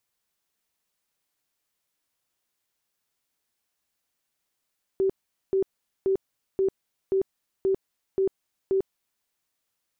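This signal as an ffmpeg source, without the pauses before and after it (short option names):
-f lavfi -i "aevalsrc='0.106*sin(2*PI*385*mod(t,0.53))*lt(mod(t,0.53),37/385)':d=4.24:s=44100"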